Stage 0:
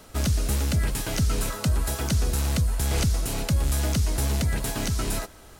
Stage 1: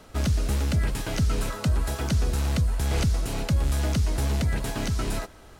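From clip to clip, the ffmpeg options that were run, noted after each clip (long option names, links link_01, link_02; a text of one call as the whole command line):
ffmpeg -i in.wav -af "highshelf=frequency=6400:gain=-10" out.wav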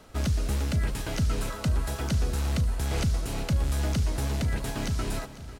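ffmpeg -i in.wav -af "aecho=1:1:498|996|1494|1992|2490:0.158|0.0903|0.0515|0.0294|0.0167,volume=-2.5dB" out.wav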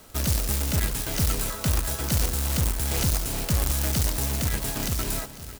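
ffmpeg -i in.wav -af "acrusher=bits=2:mode=log:mix=0:aa=0.000001,crystalizer=i=1.5:c=0" out.wav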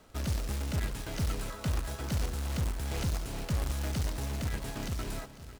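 ffmpeg -i in.wav -af "aemphasis=mode=reproduction:type=50kf,volume=-6.5dB" out.wav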